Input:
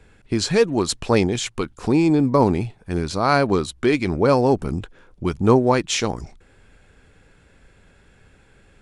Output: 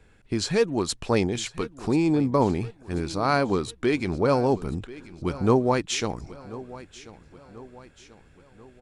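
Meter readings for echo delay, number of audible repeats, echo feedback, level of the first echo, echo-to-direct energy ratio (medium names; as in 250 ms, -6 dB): 1037 ms, 3, 48%, -18.0 dB, -17.0 dB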